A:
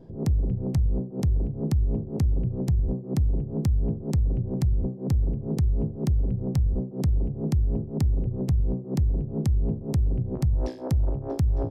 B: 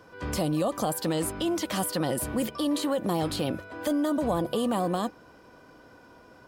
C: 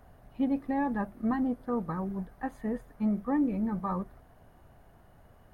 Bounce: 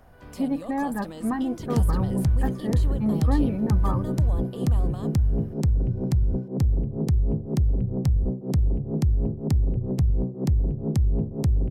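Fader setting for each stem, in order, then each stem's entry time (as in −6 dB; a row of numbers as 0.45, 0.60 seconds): +1.5, −12.5, +2.5 decibels; 1.50, 0.00, 0.00 seconds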